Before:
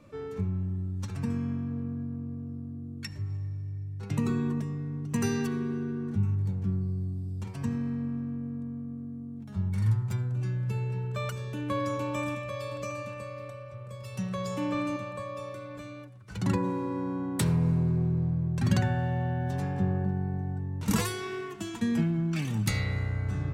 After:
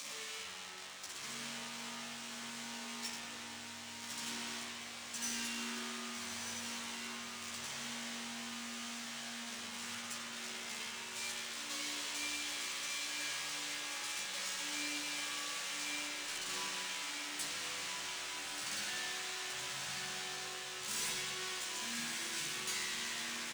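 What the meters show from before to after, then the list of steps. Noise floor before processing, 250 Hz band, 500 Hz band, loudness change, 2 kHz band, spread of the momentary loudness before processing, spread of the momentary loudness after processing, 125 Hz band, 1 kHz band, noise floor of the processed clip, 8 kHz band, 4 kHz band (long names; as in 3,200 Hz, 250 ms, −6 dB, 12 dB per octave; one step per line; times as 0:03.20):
−42 dBFS, −19.5 dB, −16.5 dB, −8.5 dB, +1.0 dB, 12 LU, 6 LU, −34.5 dB, −7.5 dB, −48 dBFS, +6.0 dB, +7.5 dB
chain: linear delta modulator 64 kbit/s, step −26.5 dBFS
resonant band-pass 6,800 Hz, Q 0.96
soft clipping −39 dBFS, distortion −11 dB
double-tracking delay 14 ms −3 dB
feedback delay with all-pass diffusion 1,237 ms, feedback 46%, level −4 dB
spring reverb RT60 1.8 s, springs 38/51 ms, chirp 60 ms, DRR −5.5 dB
level +1.5 dB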